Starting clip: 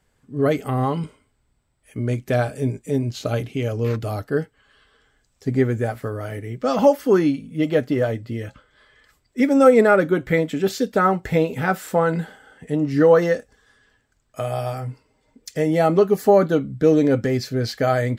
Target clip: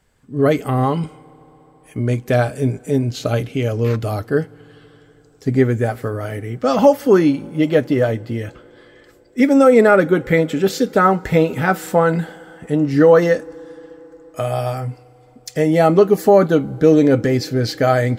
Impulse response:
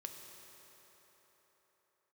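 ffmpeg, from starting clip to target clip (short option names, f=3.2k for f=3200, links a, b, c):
-filter_complex "[0:a]asplit=2[a][b];[1:a]atrim=start_sample=2205,asetrate=37044,aresample=44100[c];[b][c]afir=irnorm=-1:irlink=0,volume=-16.5dB[d];[a][d]amix=inputs=2:normalize=0,alimiter=level_in=4.5dB:limit=-1dB:release=50:level=0:latency=1,volume=-1dB"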